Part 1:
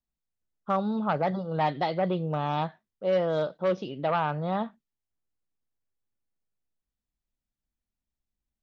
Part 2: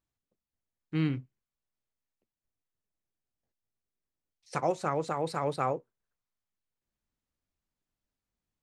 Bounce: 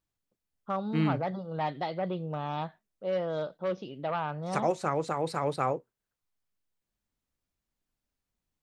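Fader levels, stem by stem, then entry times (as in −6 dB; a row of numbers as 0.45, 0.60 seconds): −5.5, +1.0 decibels; 0.00, 0.00 seconds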